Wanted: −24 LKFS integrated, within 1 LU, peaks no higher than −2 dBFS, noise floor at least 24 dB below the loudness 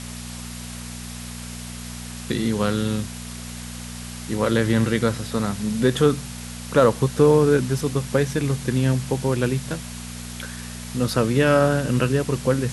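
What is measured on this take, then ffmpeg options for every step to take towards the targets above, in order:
mains hum 60 Hz; hum harmonics up to 240 Hz; level of the hum −34 dBFS; background noise floor −35 dBFS; target noise floor −46 dBFS; integrated loudness −21.5 LKFS; sample peak −4.0 dBFS; target loudness −24.0 LKFS
→ -af "bandreject=frequency=60:width_type=h:width=4,bandreject=frequency=120:width_type=h:width=4,bandreject=frequency=180:width_type=h:width=4,bandreject=frequency=240:width_type=h:width=4"
-af "afftdn=noise_reduction=11:noise_floor=-35"
-af "volume=-2.5dB"

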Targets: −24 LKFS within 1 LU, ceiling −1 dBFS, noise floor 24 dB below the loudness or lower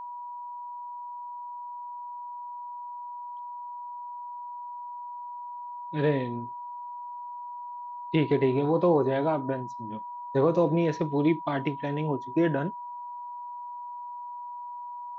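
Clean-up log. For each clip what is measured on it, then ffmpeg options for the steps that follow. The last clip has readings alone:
interfering tone 970 Hz; level of the tone −36 dBFS; integrated loudness −31.0 LKFS; sample peak −11.0 dBFS; target loudness −24.0 LKFS
→ -af "bandreject=frequency=970:width=30"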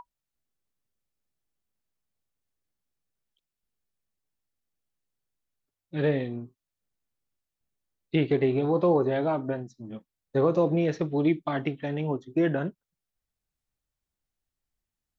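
interfering tone none found; integrated loudness −27.0 LKFS; sample peak −11.5 dBFS; target loudness −24.0 LKFS
→ -af "volume=3dB"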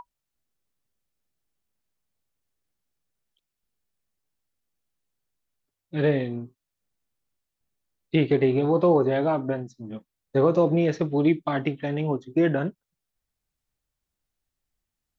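integrated loudness −24.0 LKFS; sample peak −8.5 dBFS; background noise floor −85 dBFS

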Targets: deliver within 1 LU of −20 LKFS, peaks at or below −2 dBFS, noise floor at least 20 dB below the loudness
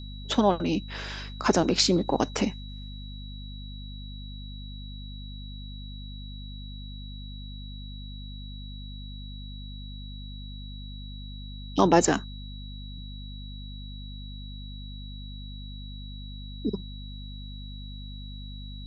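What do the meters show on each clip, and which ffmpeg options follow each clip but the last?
mains hum 50 Hz; hum harmonics up to 250 Hz; level of the hum −37 dBFS; interfering tone 3,900 Hz; level of the tone −46 dBFS; integrated loudness −32.0 LKFS; sample peak −5.5 dBFS; target loudness −20.0 LKFS
→ -af "bandreject=frequency=50:width_type=h:width=6,bandreject=frequency=100:width_type=h:width=6,bandreject=frequency=150:width_type=h:width=6,bandreject=frequency=200:width_type=h:width=6,bandreject=frequency=250:width_type=h:width=6"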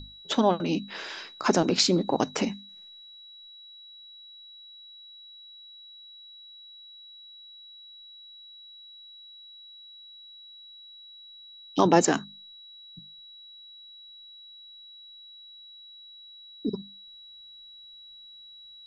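mains hum none found; interfering tone 3,900 Hz; level of the tone −46 dBFS
→ -af "bandreject=frequency=3900:width=30"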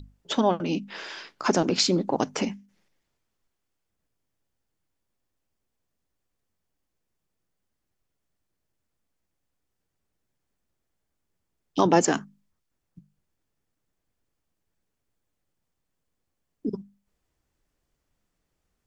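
interfering tone none found; integrated loudness −25.5 LKFS; sample peak −5.0 dBFS; target loudness −20.0 LKFS
→ -af "volume=5.5dB,alimiter=limit=-2dB:level=0:latency=1"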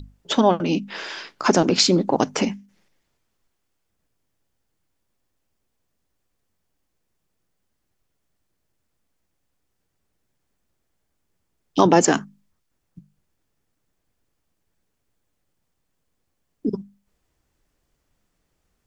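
integrated loudness −20.5 LKFS; sample peak −2.0 dBFS; background noise floor −75 dBFS

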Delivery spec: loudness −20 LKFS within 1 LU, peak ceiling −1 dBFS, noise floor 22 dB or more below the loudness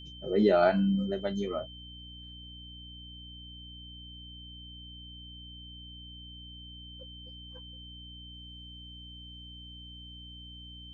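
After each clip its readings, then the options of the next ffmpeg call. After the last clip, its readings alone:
mains hum 60 Hz; hum harmonics up to 300 Hz; level of the hum −47 dBFS; interfering tone 3,100 Hz; level of the tone −47 dBFS; integrated loudness −28.0 LKFS; sample peak −11.0 dBFS; target loudness −20.0 LKFS
→ -af "bandreject=frequency=60:width_type=h:width=6,bandreject=frequency=120:width_type=h:width=6,bandreject=frequency=180:width_type=h:width=6,bandreject=frequency=240:width_type=h:width=6,bandreject=frequency=300:width_type=h:width=6"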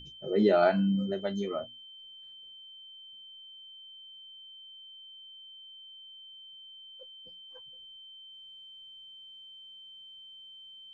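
mains hum none found; interfering tone 3,100 Hz; level of the tone −47 dBFS
→ -af "bandreject=frequency=3100:width=30"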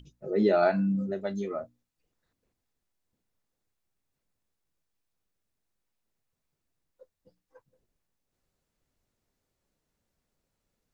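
interfering tone none found; integrated loudness −27.5 LKFS; sample peak −11.5 dBFS; target loudness −20.0 LKFS
→ -af "volume=7.5dB"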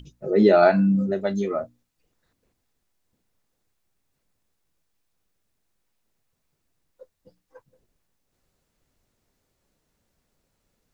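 integrated loudness −20.0 LKFS; sample peak −4.0 dBFS; background noise floor −76 dBFS

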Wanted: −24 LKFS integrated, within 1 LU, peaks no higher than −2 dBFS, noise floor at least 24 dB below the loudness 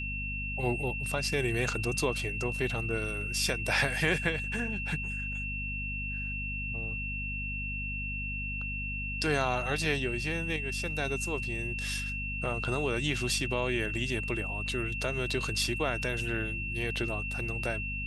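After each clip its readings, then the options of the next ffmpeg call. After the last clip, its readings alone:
mains hum 50 Hz; hum harmonics up to 250 Hz; level of the hum −35 dBFS; interfering tone 2,700 Hz; level of the tone −35 dBFS; integrated loudness −31.5 LKFS; sample peak −13.0 dBFS; target loudness −24.0 LKFS
→ -af "bandreject=frequency=50:width_type=h:width=6,bandreject=frequency=100:width_type=h:width=6,bandreject=frequency=150:width_type=h:width=6,bandreject=frequency=200:width_type=h:width=6,bandreject=frequency=250:width_type=h:width=6"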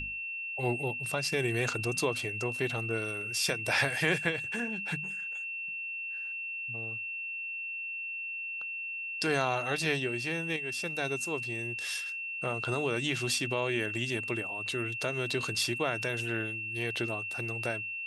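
mains hum none found; interfering tone 2,700 Hz; level of the tone −35 dBFS
→ -af "bandreject=frequency=2700:width=30"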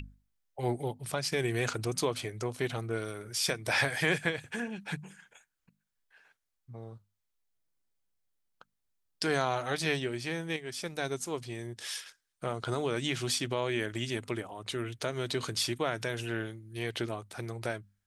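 interfering tone none found; integrated loudness −33.5 LKFS; sample peak −13.5 dBFS; target loudness −24.0 LKFS
→ -af "volume=9.5dB"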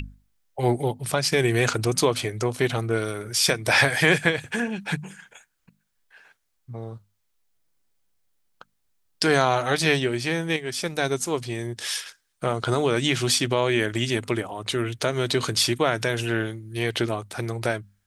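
integrated loudness −24.0 LKFS; sample peak −4.0 dBFS; background noise floor −72 dBFS

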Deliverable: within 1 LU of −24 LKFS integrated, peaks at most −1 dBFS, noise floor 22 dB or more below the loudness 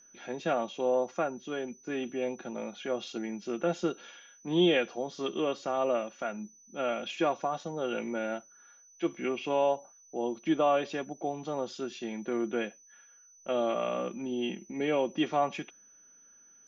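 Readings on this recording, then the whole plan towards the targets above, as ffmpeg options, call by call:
interfering tone 6,000 Hz; level of the tone −56 dBFS; integrated loudness −32.0 LKFS; sample peak −15.5 dBFS; target loudness −24.0 LKFS
→ -af "bandreject=frequency=6000:width=30"
-af "volume=8dB"

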